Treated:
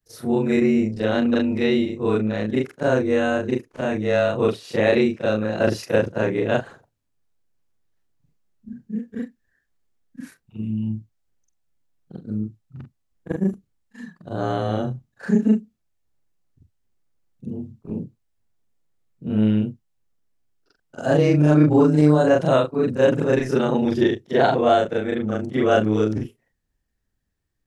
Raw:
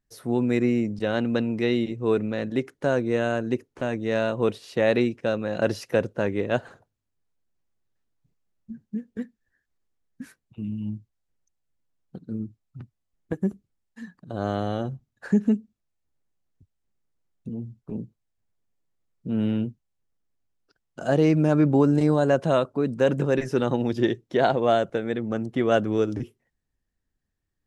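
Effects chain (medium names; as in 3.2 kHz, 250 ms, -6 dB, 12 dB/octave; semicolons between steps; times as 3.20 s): short-time spectra conjugated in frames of 93 ms; trim +7 dB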